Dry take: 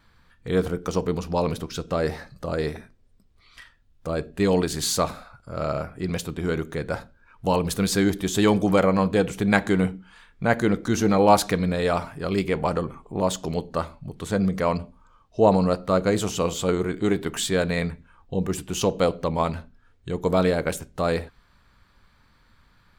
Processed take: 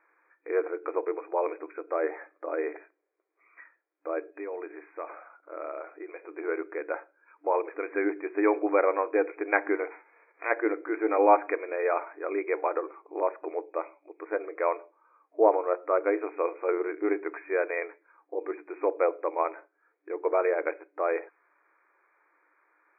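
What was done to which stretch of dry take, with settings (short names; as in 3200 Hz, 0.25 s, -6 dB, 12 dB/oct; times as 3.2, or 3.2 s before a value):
4.19–6.31 compressor 5:1, threshold -28 dBFS
9.9–10.5 spectral whitening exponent 0.1
13.66–14.2 resonant high shelf 2300 Hz +11.5 dB, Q 3
whole clip: FFT band-pass 300–2500 Hz; gain -3 dB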